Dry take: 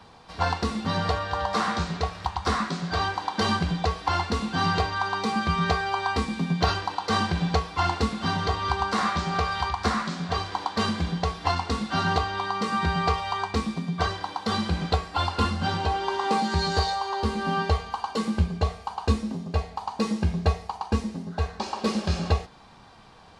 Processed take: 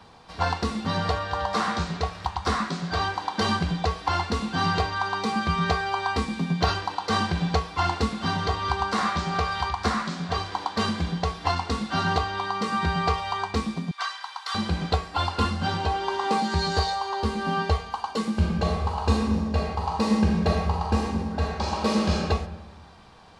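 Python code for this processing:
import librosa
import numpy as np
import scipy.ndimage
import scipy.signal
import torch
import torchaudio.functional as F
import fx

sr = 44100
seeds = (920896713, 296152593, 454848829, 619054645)

y = fx.highpass(x, sr, hz=1000.0, slope=24, at=(13.91, 14.55))
y = fx.reverb_throw(y, sr, start_s=18.32, length_s=3.82, rt60_s=1.4, drr_db=-1.5)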